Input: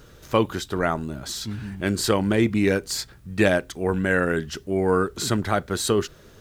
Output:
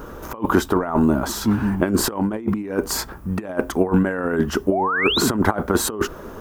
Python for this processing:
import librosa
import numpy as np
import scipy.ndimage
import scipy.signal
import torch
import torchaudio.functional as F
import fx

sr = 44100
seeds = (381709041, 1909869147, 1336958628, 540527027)

y = fx.graphic_eq_10(x, sr, hz=(125, 250, 1000, 2000, 4000, 8000), db=(-9, 6, 10, -5, -12, -7))
y = fx.over_compress(y, sr, threshold_db=-25.0, ratio=-0.5)
y = fx.spec_paint(y, sr, seeds[0], shape='rise', start_s=4.71, length_s=0.5, low_hz=550.0, high_hz=4500.0, level_db=-28.0)
y = F.gain(torch.from_numpy(y), 6.5).numpy()